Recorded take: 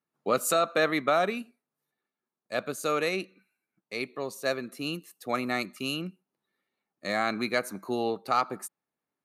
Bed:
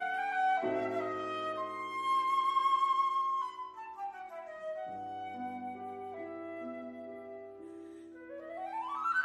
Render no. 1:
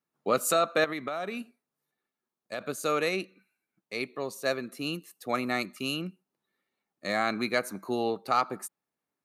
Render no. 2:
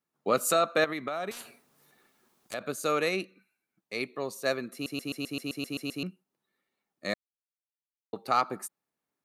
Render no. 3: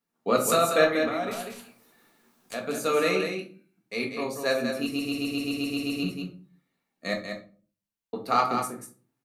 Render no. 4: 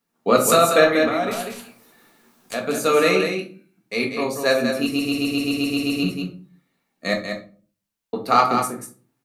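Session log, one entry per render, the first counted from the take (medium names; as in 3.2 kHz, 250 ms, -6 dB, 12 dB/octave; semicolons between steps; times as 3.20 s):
0.84–2.61 s: compression 5:1, threshold -30 dBFS
1.31–2.54 s: spectrum-flattening compressor 10:1; 4.73 s: stutter in place 0.13 s, 10 plays; 7.14–8.13 s: mute
delay 190 ms -6.5 dB; simulated room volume 250 m³, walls furnished, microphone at 1.7 m
trim +7 dB; peak limiter -3 dBFS, peak gain reduction 2.5 dB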